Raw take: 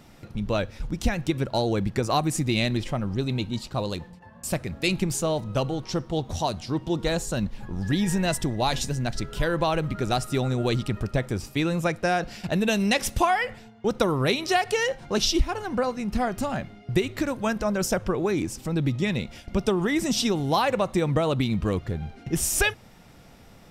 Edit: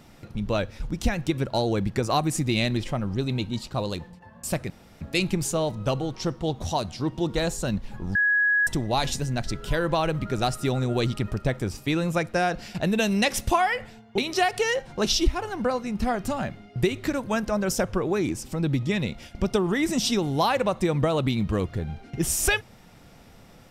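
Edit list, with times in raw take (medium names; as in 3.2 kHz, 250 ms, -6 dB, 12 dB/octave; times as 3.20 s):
4.70 s: insert room tone 0.31 s
7.84–8.36 s: bleep 1.67 kHz -18 dBFS
13.87–14.31 s: delete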